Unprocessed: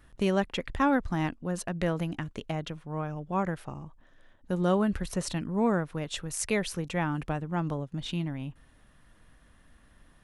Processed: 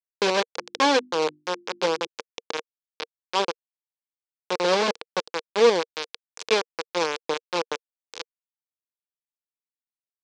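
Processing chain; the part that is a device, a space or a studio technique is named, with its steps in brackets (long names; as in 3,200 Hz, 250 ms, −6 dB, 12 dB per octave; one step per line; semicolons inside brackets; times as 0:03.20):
hand-held game console (bit reduction 4 bits; loudspeaker in its box 450–5,600 Hz, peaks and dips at 470 Hz +9 dB, 690 Hz −9 dB, 1,300 Hz −5 dB, 1,900 Hz −7 dB, 2,900 Hz −3 dB)
0:00.55–0:02.07: mains-hum notches 50/100/150/200/250/300/350 Hz
level +7 dB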